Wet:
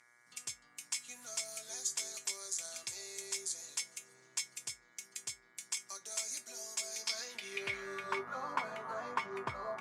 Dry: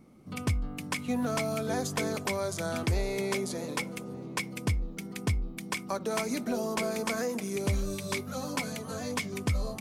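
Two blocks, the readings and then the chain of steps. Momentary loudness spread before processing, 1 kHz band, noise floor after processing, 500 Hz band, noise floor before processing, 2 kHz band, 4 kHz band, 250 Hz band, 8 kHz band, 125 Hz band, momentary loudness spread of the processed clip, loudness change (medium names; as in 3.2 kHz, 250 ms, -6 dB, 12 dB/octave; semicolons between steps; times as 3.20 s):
5 LU, -5.5 dB, -67 dBFS, -14.0 dB, -43 dBFS, -7.0 dB, -3.0 dB, -23.5 dB, +2.0 dB, -27.5 dB, 7 LU, -7.0 dB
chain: mains buzz 120 Hz, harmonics 19, -50 dBFS -1 dB/octave; band-pass sweep 7.1 kHz -> 1.1 kHz, 6.84–8.21 s; feedback comb 130 Hz, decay 0.15 s, harmonics odd, mix 80%; trim +14 dB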